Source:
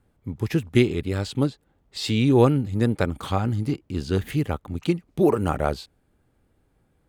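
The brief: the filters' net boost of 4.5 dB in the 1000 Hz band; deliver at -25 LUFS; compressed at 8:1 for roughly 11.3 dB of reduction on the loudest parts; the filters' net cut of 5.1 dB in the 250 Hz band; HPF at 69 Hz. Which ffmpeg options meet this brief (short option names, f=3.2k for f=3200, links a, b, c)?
-af "highpass=69,equalizer=f=250:t=o:g=-7.5,equalizer=f=1k:t=o:g=6.5,acompressor=threshold=-23dB:ratio=8,volume=5.5dB"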